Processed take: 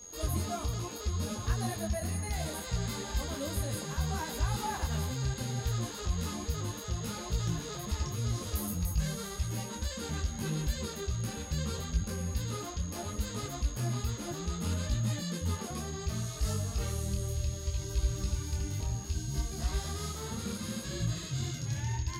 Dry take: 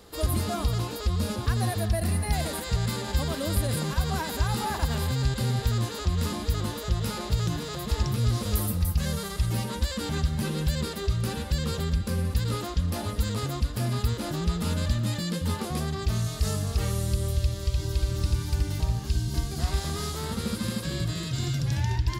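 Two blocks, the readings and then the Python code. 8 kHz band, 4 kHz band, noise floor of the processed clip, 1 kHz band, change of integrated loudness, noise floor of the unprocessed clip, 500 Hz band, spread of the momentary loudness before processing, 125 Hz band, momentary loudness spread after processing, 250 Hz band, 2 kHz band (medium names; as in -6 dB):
-1.0 dB, -6.5 dB, -41 dBFS, -6.5 dB, -6.5 dB, -35 dBFS, -6.5 dB, 3 LU, -7.0 dB, 4 LU, -6.5 dB, -6.5 dB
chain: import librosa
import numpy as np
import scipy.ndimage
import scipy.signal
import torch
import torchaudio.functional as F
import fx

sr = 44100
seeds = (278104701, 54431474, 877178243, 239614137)

y = x + 10.0 ** (-40.0 / 20.0) * np.sin(2.0 * np.pi * 6600.0 * np.arange(len(x)) / sr)
y = fx.detune_double(y, sr, cents=23)
y = y * 10.0 ** (-3.0 / 20.0)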